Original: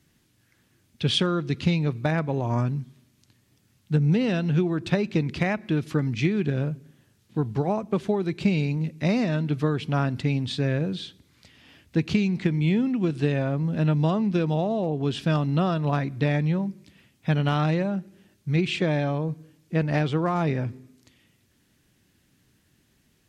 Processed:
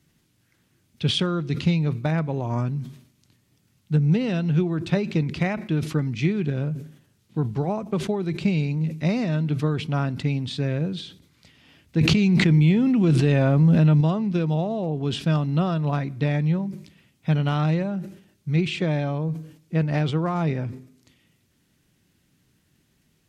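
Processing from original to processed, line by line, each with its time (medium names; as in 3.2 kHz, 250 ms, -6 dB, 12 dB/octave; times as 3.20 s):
12.01–14.01 s: level flattener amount 100%
whole clip: peaking EQ 160 Hz +4.5 dB 0.33 oct; band-stop 1.7 kHz, Q 21; decay stretcher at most 110 dB/s; trim -1.5 dB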